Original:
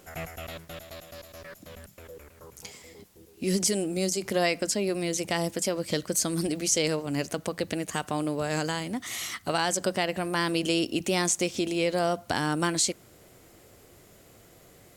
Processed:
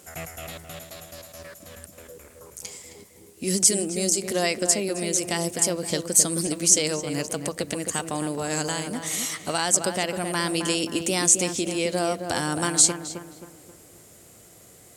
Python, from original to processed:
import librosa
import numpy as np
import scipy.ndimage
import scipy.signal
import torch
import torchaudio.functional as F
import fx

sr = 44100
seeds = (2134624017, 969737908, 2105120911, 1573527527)

y = scipy.signal.sosfilt(scipy.signal.butter(2, 48.0, 'highpass', fs=sr, output='sos'), x)
y = fx.peak_eq(y, sr, hz=8600.0, db=11.5, octaves=1.1)
y = fx.echo_filtered(y, sr, ms=265, feedback_pct=44, hz=1800.0, wet_db=-6.5)